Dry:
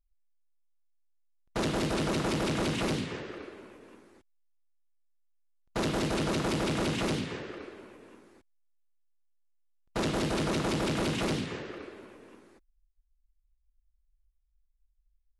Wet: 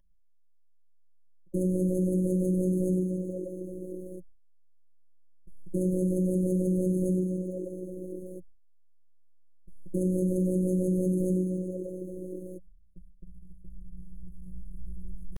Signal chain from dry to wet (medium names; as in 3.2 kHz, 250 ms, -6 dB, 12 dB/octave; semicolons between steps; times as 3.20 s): recorder AGC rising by 8.5 dB/s; pitch shift +6 st; gate with hold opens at -51 dBFS; resampled via 32 kHz; waveshaping leveller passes 2; brick-wall FIR band-stop 490–6300 Hz; resonant high shelf 4.2 kHz -9.5 dB, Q 3; robot voice 184 Hz; rippled EQ curve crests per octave 1.2, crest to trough 12 dB; level flattener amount 50%; trim -2.5 dB